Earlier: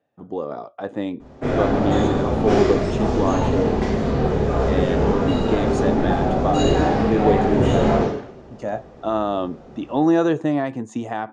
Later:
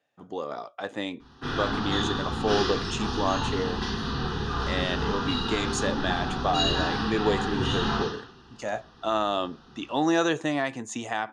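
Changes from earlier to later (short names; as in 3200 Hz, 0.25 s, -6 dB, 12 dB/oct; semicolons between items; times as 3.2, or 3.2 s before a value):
background: add fixed phaser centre 2200 Hz, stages 6; master: add tilt shelf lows -9 dB, about 1200 Hz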